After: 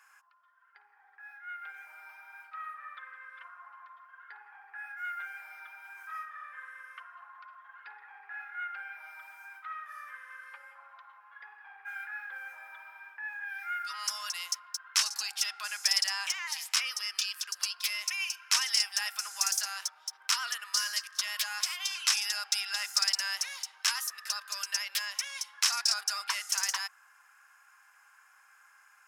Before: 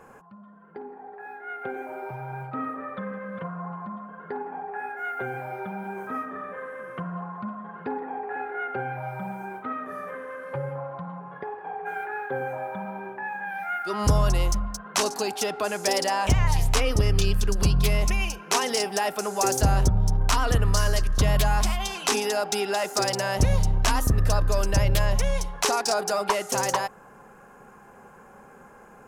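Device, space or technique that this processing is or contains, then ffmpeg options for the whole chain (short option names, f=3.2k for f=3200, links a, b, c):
headphones lying on a table: -af "highpass=f=1.4k:w=0.5412,highpass=f=1.4k:w=1.3066,equalizer=f=5.2k:t=o:w=0.23:g=8,volume=-2.5dB"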